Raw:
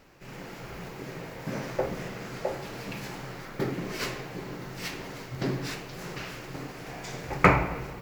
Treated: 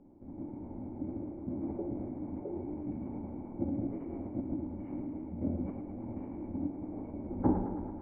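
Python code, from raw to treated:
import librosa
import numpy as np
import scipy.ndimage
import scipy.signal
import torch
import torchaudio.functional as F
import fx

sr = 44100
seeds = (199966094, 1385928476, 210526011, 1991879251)

p1 = fx.dynamic_eq(x, sr, hz=3200.0, q=0.98, threshold_db=-50.0, ratio=4.0, max_db=5)
p2 = fx.over_compress(p1, sr, threshold_db=-36.0, ratio=-0.5)
p3 = p1 + F.gain(torch.from_numpy(p2), -2.5).numpy()
p4 = fx.formant_cascade(p3, sr, vowel='u')
p5 = fx.pitch_keep_formants(p4, sr, semitones=-7.5)
p6 = p5 + fx.echo_thinned(p5, sr, ms=109, feedback_pct=76, hz=450.0, wet_db=-7.5, dry=0)
y = F.gain(torch.from_numpy(p6), 4.0).numpy()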